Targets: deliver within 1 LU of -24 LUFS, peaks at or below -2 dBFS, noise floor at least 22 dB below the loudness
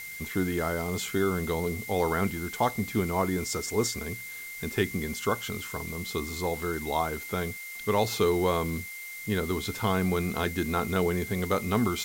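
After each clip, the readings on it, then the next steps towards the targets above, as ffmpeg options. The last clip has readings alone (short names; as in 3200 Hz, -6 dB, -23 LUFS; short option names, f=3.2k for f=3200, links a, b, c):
steady tone 2100 Hz; tone level -39 dBFS; noise floor -40 dBFS; noise floor target -52 dBFS; loudness -29.5 LUFS; peak -12.0 dBFS; loudness target -24.0 LUFS
-> -af "bandreject=f=2.1k:w=30"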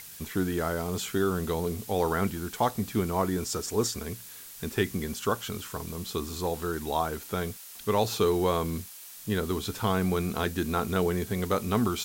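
steady tone none; noise floor -46 dBFS; noise floor target -52 dBFS
-> -af "afftdn=nr=6:nf=-46"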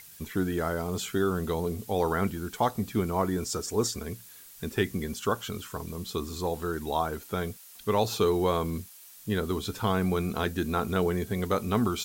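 noise floor -50 dBFS; noise floor target -52 dBFS
-> -af "afftdn=nr=6:nf=-50"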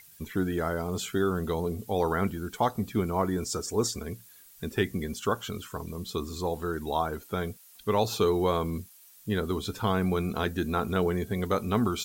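noise floor -54 dBFS; loudness -30.0 LUFS; peak -12.0 dBFS; loudness target -24.0 LUFS
-> -af "volume=6dB"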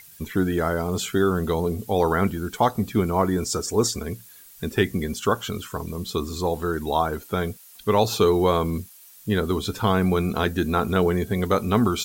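loudness -24.0 LUFS; peak -6.0 dBFS; noise floor -48 dBFS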